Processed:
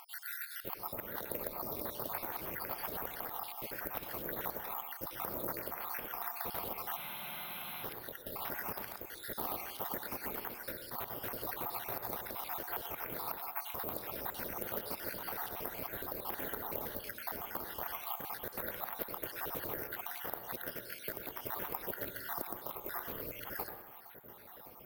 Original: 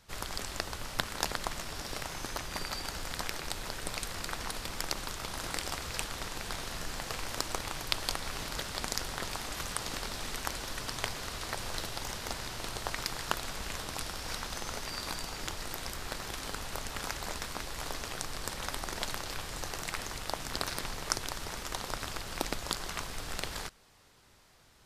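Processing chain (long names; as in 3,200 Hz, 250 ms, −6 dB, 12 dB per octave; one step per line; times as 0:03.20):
time-frequency cells dropped at random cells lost 62%
downward compressor 6 to 1, threshold −43 dBFS, peak gain reduction 16.5 dB
brickwall limiter −34.5 dBFS, peak gain reduction 11.5 dB
upward compression, threshold −56 dBFS
resonant band-pass 550 Hz, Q 0.62
on a send at −5 dB: high-frequency loss of the air 310 metres + convolution reverb RT60 0.80 s, pre-delay 91 ms
on the sum: bad sample-rate conversion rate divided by 3×, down filtered, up zero stuff
frozen spectrum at 0:06.99, 0.84 s
highs frequency-modulated by the lows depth 0.27 ms
level +10.5 dB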